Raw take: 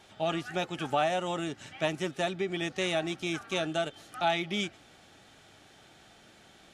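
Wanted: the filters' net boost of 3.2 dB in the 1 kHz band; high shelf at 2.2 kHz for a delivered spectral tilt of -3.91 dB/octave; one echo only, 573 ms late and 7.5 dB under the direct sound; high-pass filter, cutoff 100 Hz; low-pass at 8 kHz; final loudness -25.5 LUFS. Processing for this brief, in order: high-pass 100 Hz; low-pass 8 kHz; peaking EQ 1 kHz +4 dB; treble shelf 2.2 kHz +3.5 dB; delay 573 ms -7.5 dB; trim +4 dB

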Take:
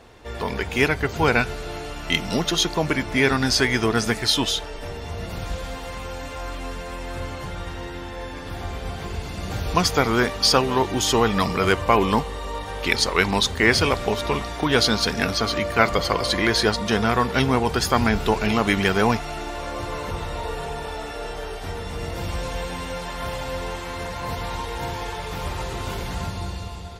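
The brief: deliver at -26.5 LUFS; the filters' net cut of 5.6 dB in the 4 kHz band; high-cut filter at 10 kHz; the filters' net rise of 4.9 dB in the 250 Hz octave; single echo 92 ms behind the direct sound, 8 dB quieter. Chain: low-pass 10 kHz; peaking EQ 250 Hz +6 dB; peaking EQ 4 kHz -7 dB; delay 92 ms -8 dB; trim -4.5 dB

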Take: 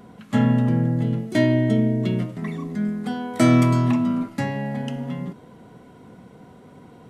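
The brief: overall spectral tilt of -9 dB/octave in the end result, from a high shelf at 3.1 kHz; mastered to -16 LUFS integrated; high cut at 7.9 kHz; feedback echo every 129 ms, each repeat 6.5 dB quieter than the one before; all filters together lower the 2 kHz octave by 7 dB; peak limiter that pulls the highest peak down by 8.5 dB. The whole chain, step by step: low-pass 7.9 kHz; peaking EQ 2 kHz -6 dB; treble shelf 3.1 kHz -6.5 dB; peak limiter -15 dBFS; feedback delay 129 ms, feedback 47%, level -6.5 dB; trim +6.5 dB

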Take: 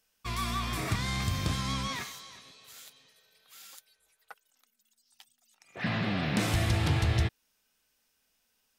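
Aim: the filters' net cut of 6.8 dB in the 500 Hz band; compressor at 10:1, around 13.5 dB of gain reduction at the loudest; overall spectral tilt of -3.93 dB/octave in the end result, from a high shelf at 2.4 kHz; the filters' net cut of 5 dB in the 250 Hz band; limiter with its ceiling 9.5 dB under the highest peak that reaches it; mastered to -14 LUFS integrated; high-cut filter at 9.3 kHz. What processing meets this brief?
low-pass 9.3 kHz; peaking EQ 250 Hz -5.5 dB; peaking EQ 500 Hz -8.5 dB; treble shelf 2.4 kHz +6 dB; compression 10:1, threshold -37 dBFS; trim +29.5 dB; peak limiter -4.5 dBFS

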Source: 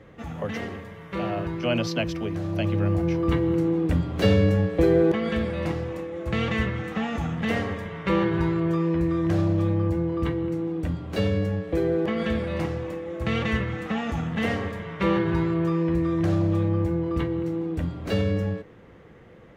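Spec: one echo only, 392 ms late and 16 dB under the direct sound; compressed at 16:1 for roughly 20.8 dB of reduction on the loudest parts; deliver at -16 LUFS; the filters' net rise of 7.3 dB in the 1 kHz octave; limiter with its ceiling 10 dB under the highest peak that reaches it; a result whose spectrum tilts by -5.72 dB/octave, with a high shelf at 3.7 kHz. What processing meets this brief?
peaking EQ 1 kHz +8.5 dB; treble shelf 3.7 kHz +8.5 dB; compression 16:1, threshold -35 dBFS; peak limiter -31 dBFS; delay 392 ms -16 dB; trim +24 dB

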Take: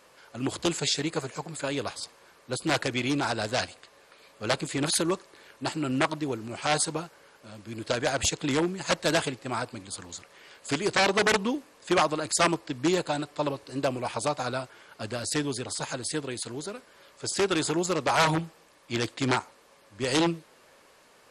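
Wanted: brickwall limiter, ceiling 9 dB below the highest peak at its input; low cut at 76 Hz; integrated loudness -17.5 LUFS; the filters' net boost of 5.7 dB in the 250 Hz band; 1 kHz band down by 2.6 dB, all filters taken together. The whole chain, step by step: high-pass 76 Hz; peaking EQ 250 Hz +8 dB; peaking EQ 1 kHz -4 dB; trim +12 dB; peak limiter -6.5 dBFS

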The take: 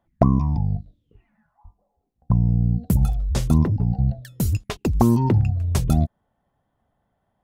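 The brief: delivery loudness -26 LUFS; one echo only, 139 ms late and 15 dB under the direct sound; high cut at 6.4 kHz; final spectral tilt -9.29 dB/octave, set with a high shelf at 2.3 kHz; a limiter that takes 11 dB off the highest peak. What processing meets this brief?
low-pass 6.4 kHz; treble shelf 2.3 kHz -8 dB; peak limiter -12.5 dBFS; delay 139 ms -15 dB; trim -2 dB

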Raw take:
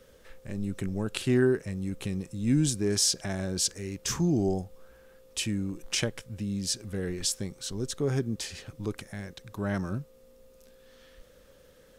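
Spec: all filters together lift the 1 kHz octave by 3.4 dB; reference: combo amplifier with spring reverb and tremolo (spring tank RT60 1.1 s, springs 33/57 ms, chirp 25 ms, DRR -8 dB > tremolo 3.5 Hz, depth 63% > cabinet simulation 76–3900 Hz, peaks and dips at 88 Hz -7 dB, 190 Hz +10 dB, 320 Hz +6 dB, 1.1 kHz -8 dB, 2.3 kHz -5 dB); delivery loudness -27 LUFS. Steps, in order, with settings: peaking EQ 1 kHz +8 dB; spring tank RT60 1.1 s, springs 33/57 ms, chirp 25 ms, DRR -8 dB; tremolo 3.5 Hz, depth 63%; cabinet simulation 76–3900 Hz, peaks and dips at 88 Hz -7 dB, 190 Hz +10 dB, 320 Hz +6 dB, 1.1 kHz -8 dB, 2.3 kHz -5 dB; trim -4.5 dB

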